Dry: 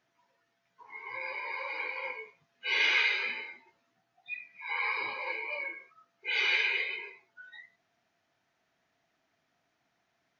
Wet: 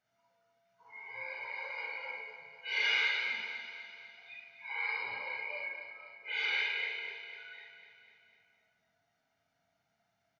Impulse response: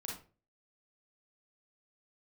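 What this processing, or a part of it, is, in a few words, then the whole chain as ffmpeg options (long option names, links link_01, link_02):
microphone above a desk: -filter_complex "[0:a]asettb=1/sr,asplit=3[link_01][link_02][link_03];[link_01]atrim=end=4.984[link_04];[link_02]atrim=start=4.98:end=6.91,asetpts=PTS-STARTPTS,afade=type=in:duration=0.004:curve=qsin,afade=type=out:start_time=1.926:duration=0.004:curve=qsin,lowpass=4900[link_05];[link_03]atrim=start=6.906[link_06];[link_04][link_05]acrossfade=duration=0.004:curve1=hsin:curve2=qsin[link_07];[link_07][link_06]acrossfade=duration=0.004:curve1=qsin:curve2=hsin,aecho=1:1:1.4:0.55[link_08];[1:a]atrim=start_sample=2205[link_09];[link_08][link_09]afir=irnorm=-1:irlink=0,aecho=1:1:249|498|747|996|1245|1494|1743:0.316|0.18|0.103|0.0586|0.0334|0.019|0.0108,volume=-4dB"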